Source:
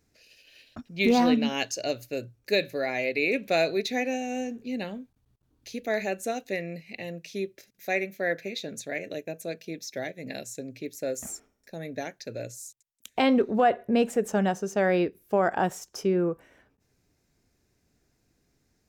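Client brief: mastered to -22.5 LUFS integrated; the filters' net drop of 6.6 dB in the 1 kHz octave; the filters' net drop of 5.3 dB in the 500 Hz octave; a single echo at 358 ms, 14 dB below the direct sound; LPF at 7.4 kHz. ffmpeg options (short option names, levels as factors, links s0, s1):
-af "lowpass=7400,equalizer=f=500:t=o:g=-4.5,equalizer=f=1000:t=o:g=-8,aecho=1:1:358:0.2,volume=2.82"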